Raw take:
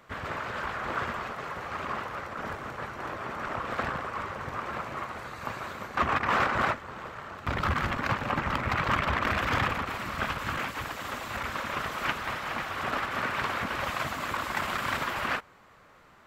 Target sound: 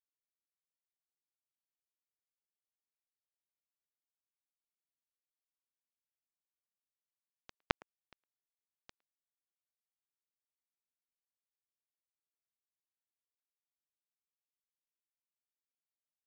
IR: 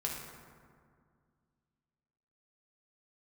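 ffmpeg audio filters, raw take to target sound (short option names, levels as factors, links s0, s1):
-filter_complex "[0:a]afftfilt=real='re*gte(hypot(re,im),0.0158)':imag='im*gte(hypot(re,im),0.0158)':win_size=1024:overlap=0.75,acrossover=split=170[s0][s1];[s1]acompressor=threshold=0.0126:ratio=8[s2];[s0][s2]amix=inputs=2:normalize=0,acrusher=bits=2:mix=0:aa=0.5,asplit=2[s3][s4];[s4]adelay=110,highpass=300,lowpass=3400,asoftclip=type=hard:threshold=0.0141,volume=0.0447[s5];[s3][s5]amix=inputs=2:normalize=0,alimiter=level_in=35.5:limit=0.891:release=50:level=0:latency=1,volume=0.596"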